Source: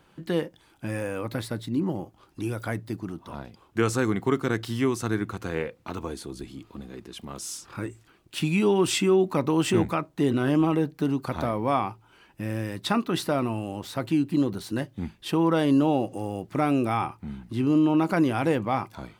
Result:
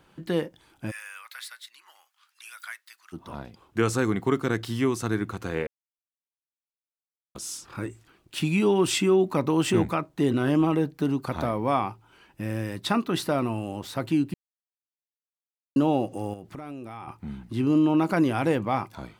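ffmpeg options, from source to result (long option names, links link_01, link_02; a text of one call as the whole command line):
ffmpeg -i in.wav -filter_complex "[0:a]asplit=3[link_01][link_02][link_03];[link_01]afade=type=out:start_time=0.9:duration=0.02[link_04];[link_02]highpass=frequency=1400:width=0.5412,highpass=frequency=1400:width=1.3066,afade=type=in:start_time=0.9:duration=0.02,afade=type=out:start_time=3.12:duration=0.02[link_05];[link_03]afade=type=in:start_time=3.12:duration=0.02[link_06];[link_04][link_05][link_06]amix=inputs=3:normalize=0,asettb=1/sr,asplit=3[link_07][link_08][link_09];[link_07]atrim=end=16.334[link_10];[link_08]atrim=start=16.33:end=17.08,asetpts=PTS-STARTPTS,afade=type=in:duration=0.004:curve=qsin,afade=type=out:start_time=0.746:duration=0.004:curve=qsin,acompressor=threshold=-35dB:ratio=8:attack=3.2:release=140:knee=1:detection=peak[link_11];[link_09]atrim=start=17.076[link_12];[link_10][link_11]acrossfade=duration=0.004:curve1=hsin:curve2=qsin[link_13];[link_13][link_12]acrossfade=duration=0.004:curve1=qsin:curve2=hsin,asplit=5[link_14][link_15][link_16][link_17][link_18];[link_14]atrim=end=5.67,asetpts=PTS-STARTPTS,afade=type=out:start_time=5.666:duration=0.004:curve=hsin[link_19];[link_15]atrim=start=5.67:end=7.35,asetpts=PTS-STARTPTS,volume=0[link_20];[link_16]atrim=start=7.35:end=14.34,asetpts=PTS-STARTPTS,afade=type=in:duration=0.004:curve=hsin,afade=type=out:start_time=6.986:duration=0.004:curve=hsin[link_21];[link_17]atrim=start=14.34:end=15.76,asetpts=PTS-STARTPTS,volume=0[link_22];[link_18]atrim=start=15.76,asetpts=PTS-STARTPTS,afade=type=in:duration=0.004:curve=hsin[link_23];[link_19][link_20][link_21][link_22][link_23]concat=n=5:v=0:a=1" out.wav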